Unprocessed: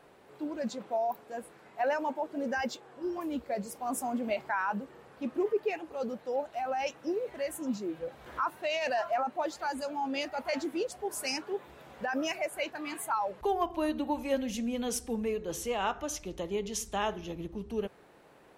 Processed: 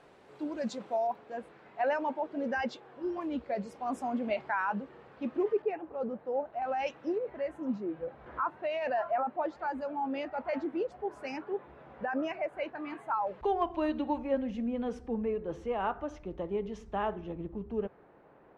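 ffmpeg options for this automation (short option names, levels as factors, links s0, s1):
-af "asetnsamples=n=441:p=0,asendcmd='1.07 lowpass f 3500;5.62 lowpass f 1400;6.62 lowpass f 3200;7.18 lowpass f 1700;13.27 lowpass f 3100;14.18 lowpass f 1500',lowpass=7400"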